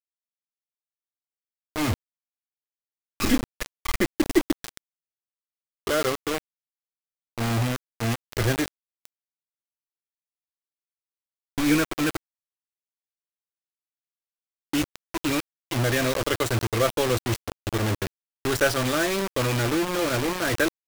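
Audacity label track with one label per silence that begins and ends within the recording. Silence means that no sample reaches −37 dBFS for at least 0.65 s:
1.940000	3.200000	silence
4.770000	5.870000	silence
6.380000	7.380000	silence
9.050000	11.580000	silence
12.170000	14.730000	silence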